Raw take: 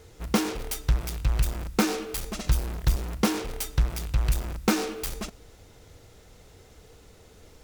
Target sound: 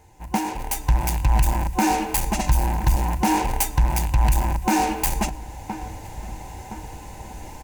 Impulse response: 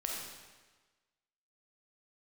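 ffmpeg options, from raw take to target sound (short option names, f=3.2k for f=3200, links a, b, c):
-filter_complex "[0:a]asplit=2[a][b];[b]adelay=1017,lowpass=f=2.2k:p=1,volume=-22.5dB,asplit=2[c][d];[d]adelay=1017,lowpass=f=2.2k:p=1,volume=0.52,asplit=2[e][f];[f]adelay=1017,lowpass=f=2.2k:p=1,volume=0.52,asplit=2[g][h];[h]adelay=1017,lowpass=f=2.2k:p=1,volume=0.52[i];[c][e][g][i]amix=inputs=4:normalize=0[j];[a][j]amix=inputs=2:normalize=0,dynaudnorm=f=110:g=13:m=15.5dB,superequalizer=7b=0.398:9b=3.55:10b=0.398:13b=0.447:14b=0.562,alimiter=limit=-8dB:level=0:latency=1:release=94,volume=-2dB"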